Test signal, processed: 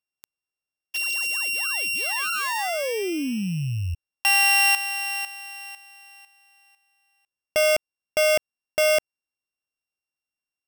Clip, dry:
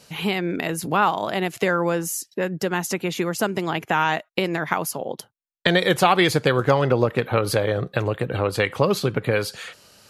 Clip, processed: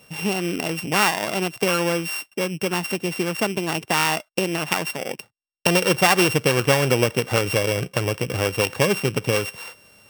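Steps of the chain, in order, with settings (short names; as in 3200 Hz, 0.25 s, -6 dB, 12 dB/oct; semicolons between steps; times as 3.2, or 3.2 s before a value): sample sorter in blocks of 16 samples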